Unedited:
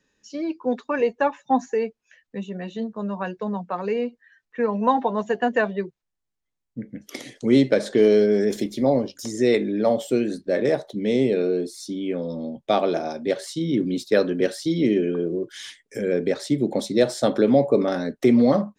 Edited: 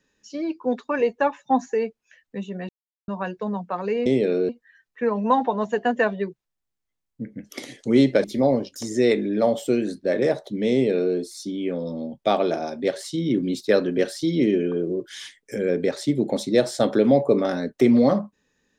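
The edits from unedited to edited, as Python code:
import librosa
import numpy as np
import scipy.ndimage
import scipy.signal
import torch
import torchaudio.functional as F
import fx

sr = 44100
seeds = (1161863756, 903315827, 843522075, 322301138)

y = fx.edit(x, sr, fx.silence(start_s=2.69, length_s=0.39),
    fx.cut(start_s=7.81, length_s=0.86),
    fx.duplicate(start_s=11.15, length_s=0.43, to_s=4.06), tone=tone)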